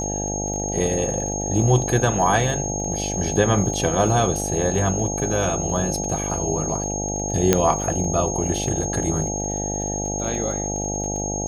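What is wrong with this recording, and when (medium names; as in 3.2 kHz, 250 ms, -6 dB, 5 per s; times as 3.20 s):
buzz 50 Hz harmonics 17 -28 dBFS
crackle 30 per s -30 dBFS
whine 6.5 kHz -27 dBFS
7.53 s: pop -1 dBFS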